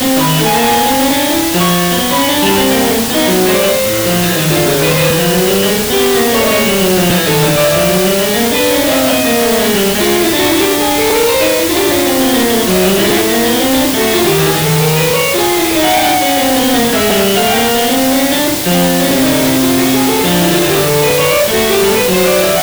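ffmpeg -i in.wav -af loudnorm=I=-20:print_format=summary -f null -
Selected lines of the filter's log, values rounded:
Input Integrated:    -10.3 LUFS
Input True Peak:      -1.0 dBTP
Input LRA:             0.5 LU
Input Threshold:     -20.3 LUFS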